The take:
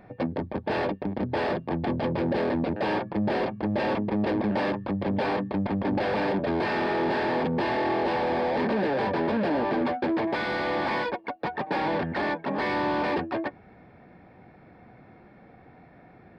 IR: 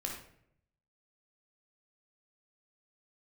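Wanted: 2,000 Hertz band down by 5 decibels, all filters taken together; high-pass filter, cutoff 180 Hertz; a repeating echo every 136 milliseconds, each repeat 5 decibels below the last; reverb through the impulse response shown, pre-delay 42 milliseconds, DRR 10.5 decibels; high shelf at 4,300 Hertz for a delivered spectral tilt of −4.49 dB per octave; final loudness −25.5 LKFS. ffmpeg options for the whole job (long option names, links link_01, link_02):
-filter_complex "[0:a]highpass=180,equalizer=frequency=2000:width_type=o:gain=-7,highshelf=frequency=4300:gain=3.5,aecho=1:1:136|272|408|544|680|816|952:0.562|0.315|0.176|0.0988|0.0553|0.031|0.0173,asplit=2[link_01][link_02];[1:a]atrim=start_sample=2205,adelay=42[link_03];[link_02][link_03]afir=irnorm=-1:irlink=0,volume=-12dB[link_04];[link_01][link_04]amix=inputs=2:normalize=0,volume=1dB"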